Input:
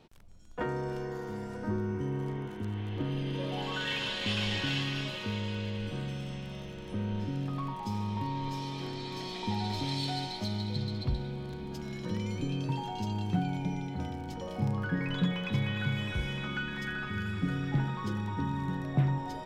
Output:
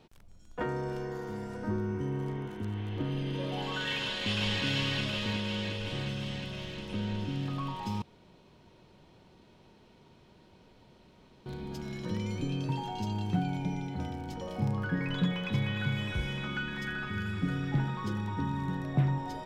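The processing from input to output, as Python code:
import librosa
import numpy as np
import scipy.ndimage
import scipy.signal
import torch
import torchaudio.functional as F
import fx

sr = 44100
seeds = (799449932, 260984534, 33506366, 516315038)

y = fx.echo_throw(x, sr, start_s=4.04, length_s=0.6, ms=360, feedback_pct=80, wet_db=-4.0)
y = fx.edit(y, sr, fx.room_tone_fill(start_s=8.02, length_s=3.44), tone=tone)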